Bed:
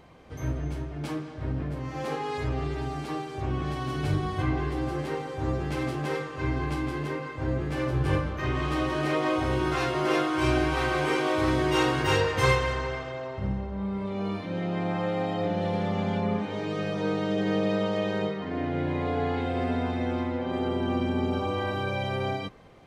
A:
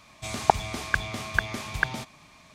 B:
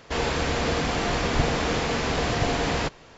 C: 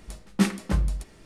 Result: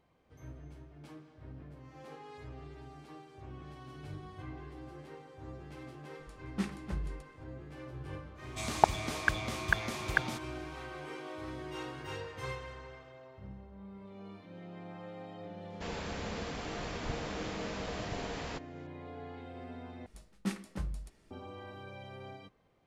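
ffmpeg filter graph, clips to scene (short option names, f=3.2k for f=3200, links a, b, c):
-filter_complex "[3:a]asplit=2[a][b];[0:a]volume=-18dB[c];[a]highshelf=f=7.6k:g=-9[d];[c]asplit=2[e][f];[e]atrim=end=20.064[g];[b]atrim=end=1.25,asetpts=PTS-STARTPTS,volume=-13.5dB[h];[f]atrim=start=21.306[i];[d]atrim=end=1.25,asetpts=PTS-STARTPTS,volume=-13dB,afade=t=in:d=0.004:c=hsin,afade=t=out:st=1.246:d=0.004:c=hsin,adelay=6190[j];[1:a]atrim=end=2.54,asetpts=PTS-STARTPTS,volume=-4dB,afade=t=in:d=0.1,afade=t=out:st=2.44:d=0.1,adelay=367794S[k];[2:a]atrim=end=3.17,asetpts=PTS-STARTPTS,volume=-15dB,afade=t=in:d=0.004:c=hsin,afade=t=out:st=3.166:d=0.004:c=hsin,adelay=15700[l];[g][h]acrossfade=d=0.004:c1=hsin:c2=hsin[m];[m][i]acrossfade=d=0.004:c1=hsin:c2=hsin[n];[n][j][k][l]amix=inputs=4:normalize=0"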